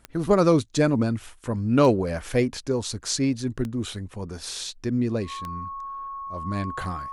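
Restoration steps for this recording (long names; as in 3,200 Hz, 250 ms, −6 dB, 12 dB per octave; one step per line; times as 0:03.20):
click removal
notch filter 1,100 Hz, Q 30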